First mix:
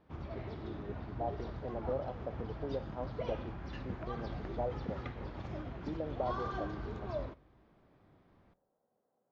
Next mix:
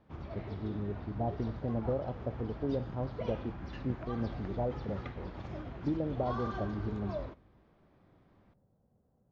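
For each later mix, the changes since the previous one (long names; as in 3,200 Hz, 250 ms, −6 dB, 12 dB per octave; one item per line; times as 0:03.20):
speech: remove high-pass filter 460 Hz 12 dB per octave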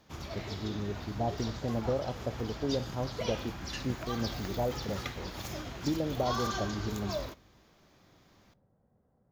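master: remove head-to-tape spacing loss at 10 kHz 44 dB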